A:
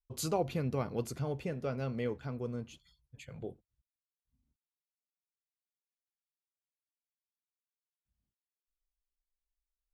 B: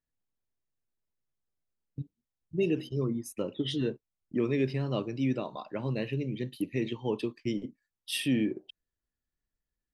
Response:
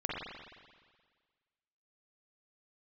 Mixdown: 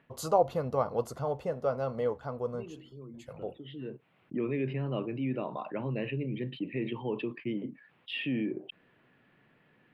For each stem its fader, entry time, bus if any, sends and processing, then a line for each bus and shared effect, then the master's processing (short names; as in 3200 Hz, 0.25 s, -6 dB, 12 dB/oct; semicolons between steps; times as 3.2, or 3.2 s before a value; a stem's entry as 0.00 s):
-2.5 dB, 0.00 s, no send, band shelf 790 Hz +12 dB; notch 2400 Hz, Q 6.3
-4.5 dB, 0.00 s, no send, elliptic band-pass 130–2700 Hz, stop band 40 dB; fast leveller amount 50%; auto duck -14 dB, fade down 0.20 s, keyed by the first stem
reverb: off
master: dry